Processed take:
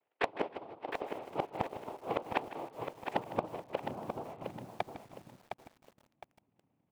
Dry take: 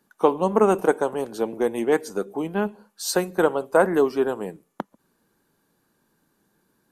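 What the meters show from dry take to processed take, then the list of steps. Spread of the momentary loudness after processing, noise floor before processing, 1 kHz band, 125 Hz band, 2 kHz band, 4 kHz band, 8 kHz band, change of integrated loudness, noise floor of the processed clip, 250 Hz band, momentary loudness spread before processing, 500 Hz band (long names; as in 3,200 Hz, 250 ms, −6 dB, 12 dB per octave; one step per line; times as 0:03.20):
15 LU, −70 dBFS, −10.5 dB, −12.5 dB, −12.0 dB, −12.0 dB, −27.5 dB, −16.5 dB, −81 dBFS, −18.0 dB, 14 LU, −18.0 dB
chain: elliptic low-pass filter 950 Hz, stop band 40 dB
treble cut that deepens with the level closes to 340 Hz, closed at −15.5 dBFS
noise gate with hold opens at −50 dBFS
parametric band 300 Hz −3 dB 0.51 octaves
downward compressor 6 to 1, threshold −28 dBFS, peak gain reduction 12.5 dB
high-pass filter sweep 580 Hz → 160 Hz, 0:02.15–0:03.88
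cochlear-implant simulation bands 4
gate with flip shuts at −26 dBFS, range −25 dB
gain into a clipping stage and back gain 28.5 dB
repeating echo 156 ms, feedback 24%, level −15 dB
feedback echo at a low word length 711 ms, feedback 35%, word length 11 bits, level −6.5 dB
level +10 dB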